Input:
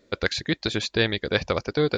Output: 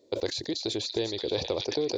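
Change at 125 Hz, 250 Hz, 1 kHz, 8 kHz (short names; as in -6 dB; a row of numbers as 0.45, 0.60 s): -11.5, -5.5, -8.5, -0.5 dB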